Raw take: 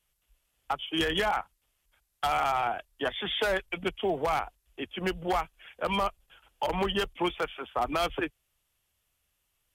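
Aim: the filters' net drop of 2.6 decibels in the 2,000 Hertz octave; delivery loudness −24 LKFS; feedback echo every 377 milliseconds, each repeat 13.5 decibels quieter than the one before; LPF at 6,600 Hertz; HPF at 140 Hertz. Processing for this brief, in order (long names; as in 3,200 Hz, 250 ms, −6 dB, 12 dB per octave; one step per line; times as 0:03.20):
high-pass filter 140 Hz
low-pass filter 6,600 Hz
parametric band 2,000 Hz −3.5 dB
repeating echo 377 ms, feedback 21%, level −13.5 dB
level +7.5 dB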